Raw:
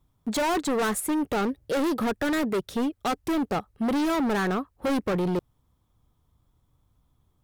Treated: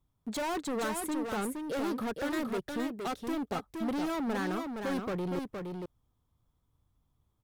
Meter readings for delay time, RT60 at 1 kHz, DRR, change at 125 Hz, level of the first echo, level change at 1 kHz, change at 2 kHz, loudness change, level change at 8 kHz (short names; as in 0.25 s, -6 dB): 0.467 s, none, none, -7.0 dB, -5.0 dB, -7.5 dB, -7.5 dB, -7.5 dB, -7.5 dB